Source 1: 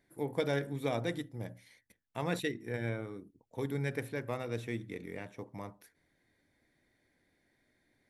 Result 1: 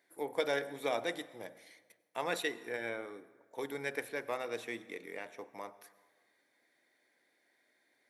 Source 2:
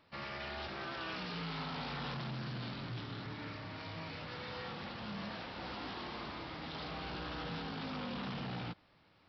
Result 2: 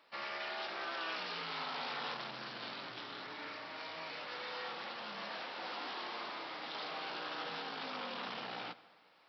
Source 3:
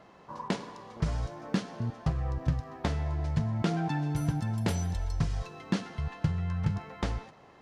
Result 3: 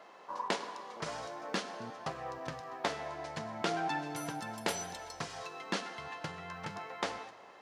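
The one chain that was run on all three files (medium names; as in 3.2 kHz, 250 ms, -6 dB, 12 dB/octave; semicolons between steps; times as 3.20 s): high-pass 470 Hz 12 dB/octave; plate-style reverb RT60 1.5 s, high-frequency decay 0.65×, pre-delay 80 ms, DRR 17.5 dB; trim +2.5 dB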